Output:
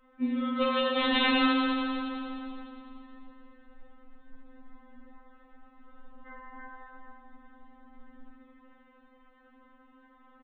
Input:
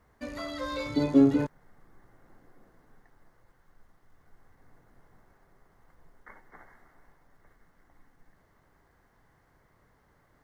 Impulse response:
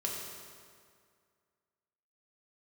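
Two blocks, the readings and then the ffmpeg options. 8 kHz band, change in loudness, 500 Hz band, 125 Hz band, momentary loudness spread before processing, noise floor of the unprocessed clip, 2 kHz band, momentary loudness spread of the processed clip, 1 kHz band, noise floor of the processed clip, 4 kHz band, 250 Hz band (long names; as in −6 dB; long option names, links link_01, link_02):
can't be measured, −1.0 dB, +0.5 dB, below −20 dB, 16 LU, −66 dBFS, +11.5 dB, 23 LU, +10.5 dB, −61 dBFS, +14.5 dB, −2.0 dB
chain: -filter_complex "[0:a]aresample=8000,aeval=exprs='(mod(21.1*val(0)+1,2)-1)/21.1':channel_layout=same,aresample=44100[link_01];[1:a]atrim=start_sample=2205,asetrate=26460,aresample=44100[link_02];[link_01][link_02]afir=irnorm=-1:irlink=0,afftfilt=real='re*3.46*eq(mod(b,12),0)':imag='im*3.46*eq(mod(b,12),0)':win_size=2048:overlap=0.75,volume=3dB"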